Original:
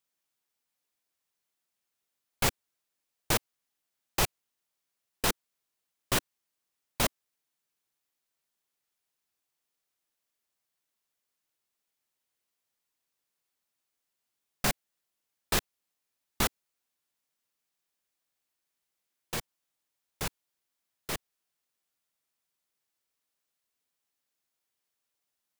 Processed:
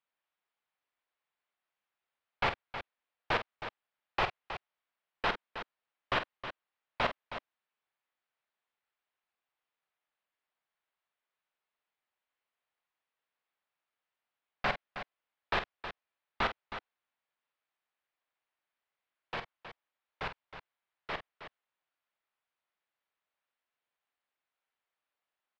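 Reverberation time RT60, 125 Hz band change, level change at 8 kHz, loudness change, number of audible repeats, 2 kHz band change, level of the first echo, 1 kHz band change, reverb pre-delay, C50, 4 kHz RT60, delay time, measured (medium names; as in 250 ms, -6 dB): no reverb, -8.5 dB, under -25 dB, -5.0 dB, 2, +1.0 dB, -10.0 dB, +2.0 dB, no reverb, no reverb, no reverb, 47 ms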